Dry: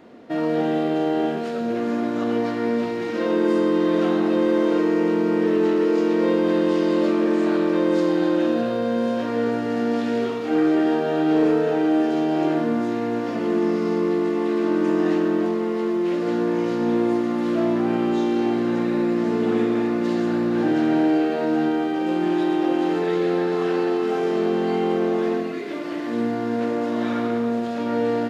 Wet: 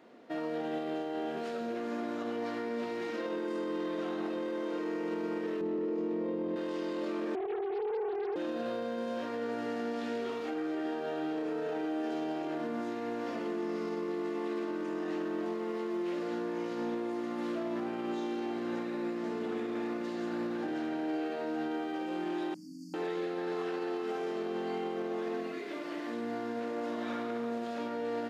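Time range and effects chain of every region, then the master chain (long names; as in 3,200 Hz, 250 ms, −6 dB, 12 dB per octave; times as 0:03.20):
0:05.61–0:06.56: spectral tilt −4 dB per octave + notch filter 1,500 Hz, Q 7.8
0:07.35–0:08.36: three sine waves on the formant tracks + flutter between parallel walls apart 11 metres, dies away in 0.21 s + highs frequency-modulated by the lows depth 0.62 ms
0:22.54–0:22.94: linear-phase brick-wall band-stop 290–4,400 Hz + hum removal 145.4 Hz, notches 23
whole clip: high-pass filter 350 Hz 6 dB per octave; brickwall limiter −20 dBFS; level −7.5 dB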